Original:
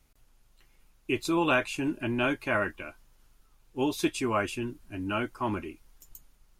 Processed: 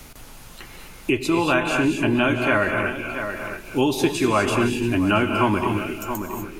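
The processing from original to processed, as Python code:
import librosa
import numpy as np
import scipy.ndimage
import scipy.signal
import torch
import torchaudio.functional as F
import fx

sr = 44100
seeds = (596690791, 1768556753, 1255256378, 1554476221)

p1 = fx.rider(x, sr, range_db=10, speed_s=0.5)
p2 = p1 + fx.echo_single(p1, sr, ms=674, db=-18.0, dry=0)
p3 = fx.rev_gated(p2, sr, seeds[0], gate_ms=270, shape='rising', drr_db=4.5)
p4 = fx.band_squash(p3, sr, depth_pct=70)
y = p4 * 10.0 ** (8.0 / 20.0)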